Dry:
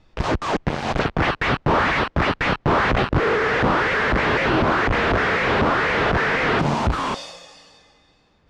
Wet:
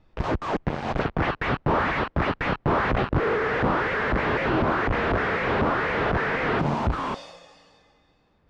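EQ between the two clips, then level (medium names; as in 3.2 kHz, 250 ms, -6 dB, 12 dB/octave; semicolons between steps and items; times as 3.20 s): treble shelf 3.3 kHz -11 dB; -3.5 dB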